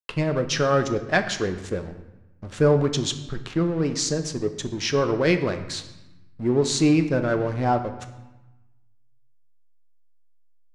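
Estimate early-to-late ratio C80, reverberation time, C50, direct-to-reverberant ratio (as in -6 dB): 13.0 dB, 1.1 s, 11.0 dB, 7.0 dB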